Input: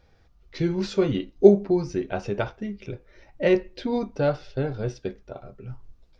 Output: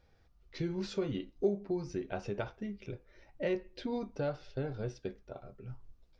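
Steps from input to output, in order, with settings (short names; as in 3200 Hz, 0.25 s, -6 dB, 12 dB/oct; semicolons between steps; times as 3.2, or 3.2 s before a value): compressor 2:1, threshold -26 dBFS, peak gain reduction 10.5 dB; gain -7.5 dB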